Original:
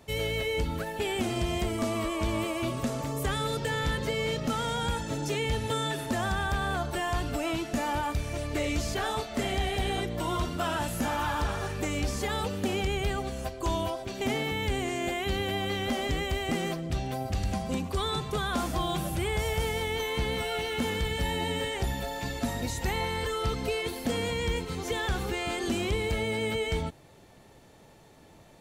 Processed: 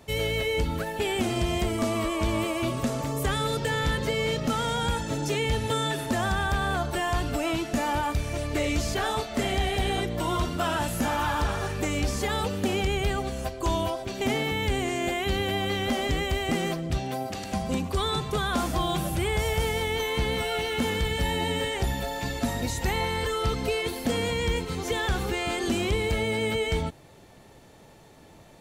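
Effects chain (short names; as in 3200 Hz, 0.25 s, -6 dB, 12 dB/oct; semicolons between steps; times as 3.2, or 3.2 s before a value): 16.98–17.52 HPF 120 Hz -> 280 Hz 12 dB/oct; gain +3 dB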